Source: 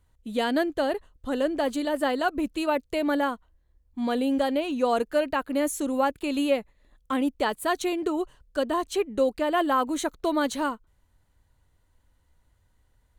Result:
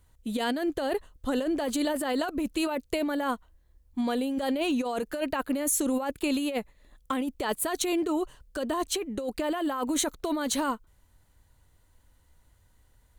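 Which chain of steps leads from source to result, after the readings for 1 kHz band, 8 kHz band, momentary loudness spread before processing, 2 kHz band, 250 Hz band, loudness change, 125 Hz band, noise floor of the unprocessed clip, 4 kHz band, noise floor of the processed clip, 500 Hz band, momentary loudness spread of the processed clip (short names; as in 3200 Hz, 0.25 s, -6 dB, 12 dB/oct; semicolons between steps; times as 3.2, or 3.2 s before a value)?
-5.0 dB, +6.5 dB, 6 LU, -4.0 dB, -1.5 dB, -3.0 dB, n/a, -67 dBFS, 0.0 dB, -64 dBFS, -5.0 dB, 6 LU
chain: high shelf 5800 Hz +6.5 dB; negative-ratio compressor -28 dBFS, ratio -1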